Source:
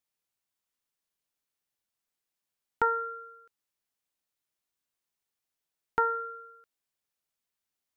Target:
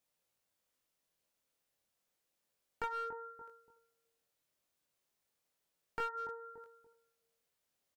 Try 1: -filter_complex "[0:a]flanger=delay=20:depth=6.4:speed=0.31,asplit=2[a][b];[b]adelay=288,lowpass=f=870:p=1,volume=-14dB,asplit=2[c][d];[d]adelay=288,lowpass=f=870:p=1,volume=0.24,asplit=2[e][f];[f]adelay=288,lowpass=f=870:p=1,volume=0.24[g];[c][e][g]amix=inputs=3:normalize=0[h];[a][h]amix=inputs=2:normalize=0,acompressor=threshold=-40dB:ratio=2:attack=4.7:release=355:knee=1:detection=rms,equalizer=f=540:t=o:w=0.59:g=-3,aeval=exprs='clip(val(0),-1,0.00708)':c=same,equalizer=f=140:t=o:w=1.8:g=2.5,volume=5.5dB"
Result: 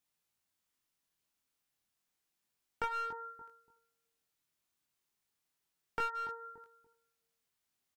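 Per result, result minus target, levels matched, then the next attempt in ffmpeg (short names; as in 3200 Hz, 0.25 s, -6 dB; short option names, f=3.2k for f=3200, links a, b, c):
500 Hz band -4.5 dB; compressor: peak gain reduction -4 dB
-filter_complex "[0:a]flanger=delay=20:depth=6.4:speed=0.31,asplit=2[a][b];[b]adelay=288,lowpass=f=870:p=1,volume=-14dB,asplit=2[c][d];[d]adelay=288,lowpass=f=870:p=1,volume=0.24,asplit=2[e][f];[f]adelay=288,lowpass=f=870:p=1,volume=0.24[g];[c][e][g]amix=inputs=3:normalize=0[h];[a][h]amix=inputs=2:normalize=0,acompressor=threshold=-40dB:ratio=2:attack=4.7:release=355:knee=1:detection=rms,equalizer=f=540:t=o:w=0.59:g=7.5,aeval=exprs='clip(val(0),-1,0.00708)':c=same,equalizer=f=140:t=o:w=1.8:g=2.5,volume=5.5dB"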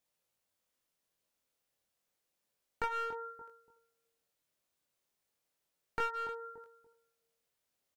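compressor: peak gain reduction -4 dB
-filter_complex "[0:a]flanger=delay=20:depth=6.4:speed=0.31,asplit=2[a][b];[b]adelay=288,lowpass=f=870:p=1,volume=-14dB,asplit=2[c][d];[d]adelay=288,lowpass=f=870:p=1,volume=0.24,asplit=2[e][f];[f]adelay=288,lowpass=f=870:p=1,volume=0.24[g];[c][e][g]amix=inputs=3:normalize=0[h];[a][h]amix=inputs=2:normalize=0,acompressor=threshold=-48.5dB:ratio=2:attack=4.7:release=355:knee=1:detection=rms,equalizer=f=540:t=o:w=0.59:g=7.5,aeval=exprs='clip(val(0),-1,0.00708)':c=same,equalizer=f=140:t=o:w=1.8:g=2.5,volume=5.5dB"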